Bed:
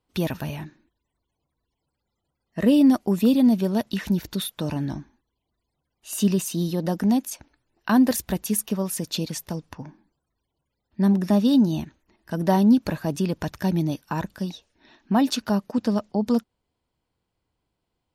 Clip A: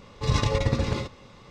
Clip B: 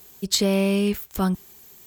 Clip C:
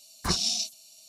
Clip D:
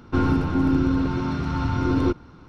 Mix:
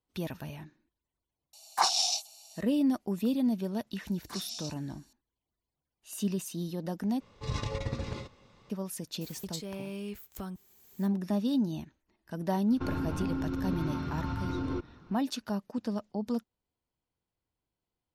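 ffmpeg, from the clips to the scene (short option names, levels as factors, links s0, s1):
-filter_complex "[3:a]asplit=2[s0][s1];[0:a]volume=0.299[s2];[s0]highpass=f=810:t=q:w=8.1[s3];[s1]highpass=260[s4];[2:a]acompressor=threshold=0.0282:ratio=10:attack=1.4:release=814:knee=1:detection=rms[s5];[4:a]alimiter=limit=0.133:level=0:latency=1:release=63[s6];[s2]asplit=2[s7][s8];[s7]atrim=end=7.204[s9];[1:a]atrim=end=1.5,asetpts=PTS-STARTPTS,volume=0.299[s10];[s8]atrim=start=8.696[s11];[s3]atrim=end=1.08,asetpts=PTS-STARTPTS,volume=0.891,afade=t=in:d=0.004:c=hsin,afade=t=out:st=1.076:d=0.004:c=hsin,adelay=1530[s12];[s4]atrim=end=1.08,asetpts=PTS-STARTPTS,volume=0.211,afade=t=in:d=0.004:c=hsin,afade=t=out:st=1.076:d=0.004:c=hsin,adelay=178605S[s13];[s5]atrim=end=1.86,asetpts=PTS-STARTPTS,volume=0.841,afade=t=in:d=0.004:c=hsin,afade=t=out:st=1.856:d=0.004:c=hsin,adelay=9210[s14];[s6]atrim=end=2.48,asetpts=PTS-STARTPTS,volume=0.398,afade=t=in:d=0.004:c=hsin,afade=t=out:st=2.476:d=0.004:c=hsin,adelay=559188S[s15];[s9][s10]acrossfade=d=0.004:c1=hsin:c2=hsin[s16];[s16][s11]acrossfade=d=0.004:c1=hsin:c2=hsin[s17];[s17][s12][s13][s14][s15]amix=inputs=5:normalize=0"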